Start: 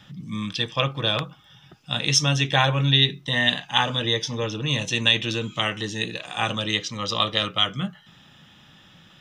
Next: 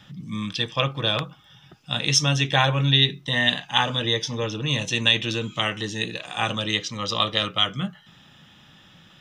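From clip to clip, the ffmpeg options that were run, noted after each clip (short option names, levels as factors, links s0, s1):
-af anull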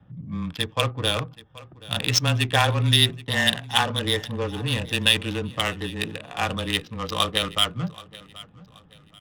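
-af "adynamicsmooth=sensitivity=2:basefreq=710,aecho=1:1:778|1556|2334:0.1|0.034|0.0116,afreqshift=-17"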